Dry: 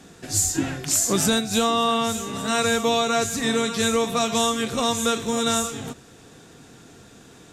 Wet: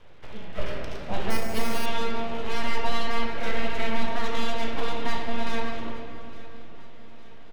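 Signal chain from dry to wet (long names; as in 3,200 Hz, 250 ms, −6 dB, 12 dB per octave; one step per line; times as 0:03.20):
Chebyshev low-pass filter 3,400 Hz, order 8
parametric band 1,000 Hz −13.5 dB 0.45 octaves
mains-hum notches 50/100/150/200 Hz
full-wave rectification
repeating echo 863 ms, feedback 49%, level −19 dB
convolution reverb RT60 2.6 s, pre-delay 7 ms, DRR −0.5 dB
0:01.30–0:01.86: bad sample-rate conversion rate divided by 6×, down filtered, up hold
level −4 dB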